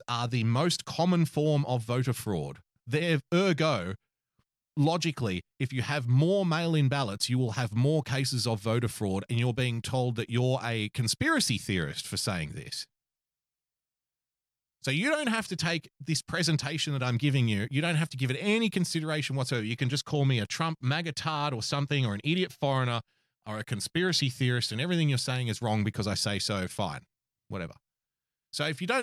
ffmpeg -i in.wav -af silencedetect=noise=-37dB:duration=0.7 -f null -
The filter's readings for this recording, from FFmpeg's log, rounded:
silence_start: 3.95
silence_end: 4.77 | silence_duration: 0.82
silence_start: 12.83
silence_end: 14.84 | silence_duration: 2.01
silence_start: 27.71
silence_end: 28.54 | silence_duration: 0.83